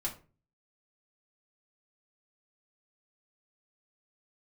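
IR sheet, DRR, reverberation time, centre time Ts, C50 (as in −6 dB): −3.0 dB, 0.35 s, 14 ms, 12.0 dB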